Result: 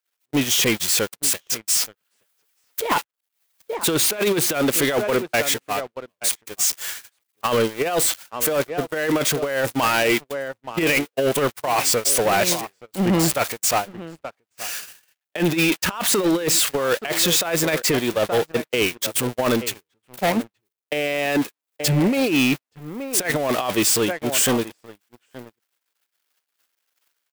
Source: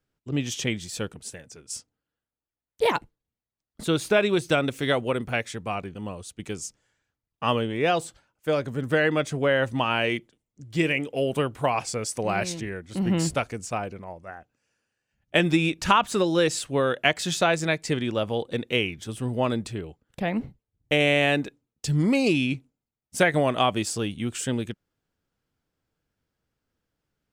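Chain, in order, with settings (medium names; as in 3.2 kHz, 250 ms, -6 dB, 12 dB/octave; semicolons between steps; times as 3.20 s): zero-crossing glitches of -17.5 dBFS; treble shelf 2.6 kHz -2.5 dB; gate -25 dBFS, range -45 dB; high-pass 62 Hz; tone controls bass -10 dB, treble -8 dB; echo from a far wall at 150 m, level -19 dB; compressor with a negative ratio -27 dBFS, ratio -0.5; waveshaping leveller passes 3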